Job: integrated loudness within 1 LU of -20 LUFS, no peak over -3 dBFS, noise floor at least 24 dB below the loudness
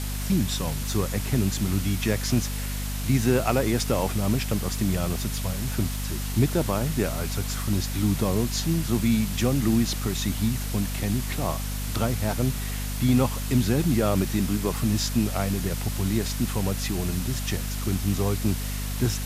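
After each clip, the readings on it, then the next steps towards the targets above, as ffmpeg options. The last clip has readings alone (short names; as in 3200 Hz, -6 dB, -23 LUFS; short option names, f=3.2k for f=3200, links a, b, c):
hum 50 Hz; harmonics up to 250 Hz; hum level -28 dBFS; noise floor -30 dBFS; noise floor target -50 dBFS; loudness -26.0 LUFS; peak -8.0 dBFS; loudness target -20.0 LUFS
-> -af "bandreject=f=50:t=h:w=6,bandreject=f=100:t=h:w=6,bandreject=f=150:t=h:w=6,bandreject=f=200:t=h:w=6,bandreject=f=250:t=h:w=6"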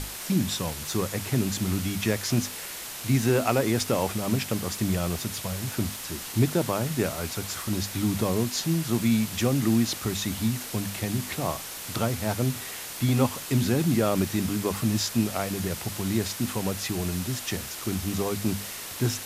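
hum none; noise floor -38 dBFS; noise floor target -51 dBFS
-> -af "afftdn=nr=13:nf=-38"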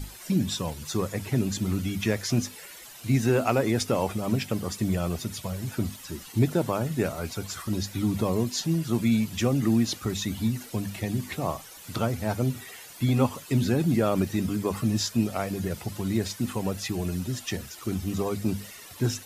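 noise floor -46 dBFS; noise floor target -52 dBFS
-> -af "afftdn=nr=6:nf=-46"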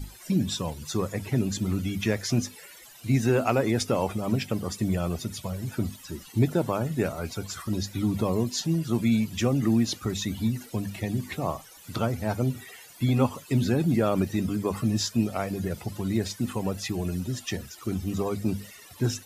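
noise floor -49 dBFS; noise floor target -52 dBFS
-> -af "afftdn=nr=6:nf=-49"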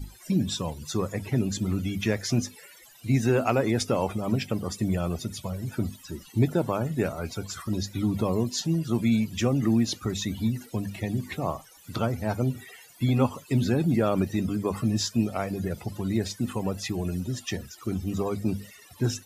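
noise floor -52 dBFS; loudness -28.0 LUFS; peak -10.0 dBFS; loudness target -20.0 LUFS
-> -af "volume=8dB,alimiter=limit=-3dB:level=0:latency=1"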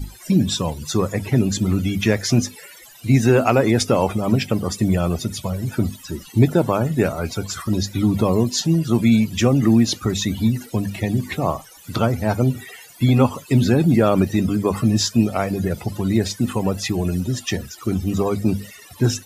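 loudness -20.0 LUFS; peak -3.0 dBFS; noise floor -44 dBFS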